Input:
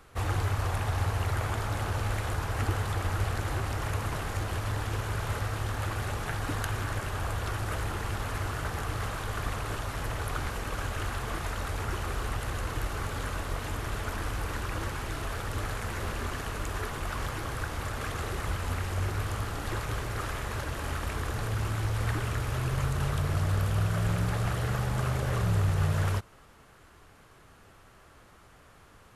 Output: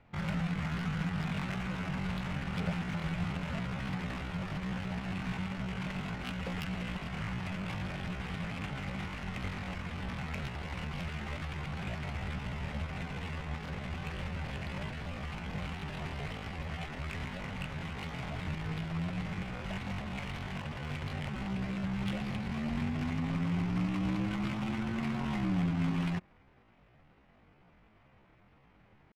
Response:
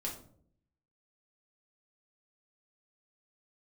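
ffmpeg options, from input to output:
-af "aeval=exprs='0.2*(cos(1*acos(clip(val(0)/0.2,-1,1)))-cos(1*PI/2))+0.00112*(cos(3*acos(clip(val(0)/0.2,-1,1)))-cos(3*PI/2))+0.0178*(cos(4*acos(clip(val(0)/0.2,-1,1)))-cos(4*PI/2))+0.0141*(cos(6*acos(clip(val(0)/0.2,-1,1)))-cos(6*PI/2))':channel_layout=same,asetrate=78577,aresample=44100,atempo=0.561231,adynamicsmooth=sensitivity=6.5:basefreq=1800,volume=-4.5dB"

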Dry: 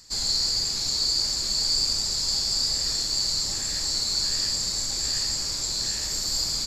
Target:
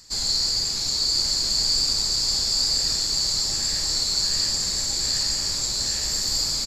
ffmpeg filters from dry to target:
ffmpeg -i in.wav -af "aecho=1:1:1023:0.531,volume=1.5dB" out.wav

